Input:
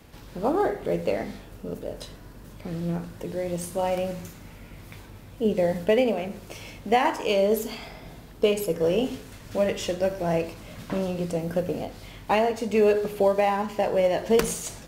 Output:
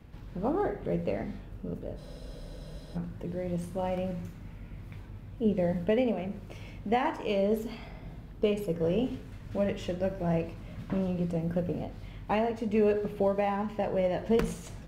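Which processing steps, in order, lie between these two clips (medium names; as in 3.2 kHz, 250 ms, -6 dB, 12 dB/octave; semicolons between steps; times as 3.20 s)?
tone controls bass +9 dB, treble -10 dB; spectral freeze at 2.00 s, 0.97 s; trim -7 dB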